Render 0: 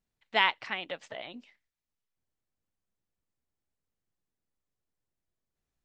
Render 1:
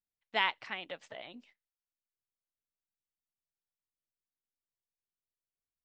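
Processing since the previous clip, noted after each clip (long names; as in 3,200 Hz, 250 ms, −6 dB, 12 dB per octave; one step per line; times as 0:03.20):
noise gate −58 dBFS, range −12 dB
level −5 dB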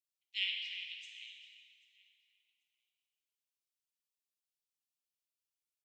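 elliptic high-pass filter 2,500 Hz, stop band 50 dB
repeating echo 788 ms, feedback 24%, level −23 dB
dense smooth reverb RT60 2.3 s, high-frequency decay 0.8×, DRR −0.5 dB
level −1 dB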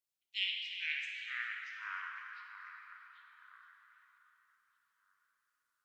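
delay with pitch and tempo change per echo 363 ms, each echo −4 semitones, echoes 3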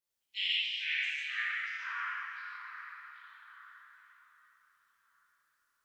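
reverb whose tail is shaped and stops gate 200 ms flat, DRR −7.5 dB
level −2.5 dB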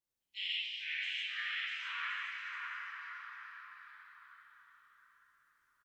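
low-shelf EQ 450 Hz +10 dB
bouncing-ball delay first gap 650 ms, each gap 0.65×, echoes 5
level −6 dB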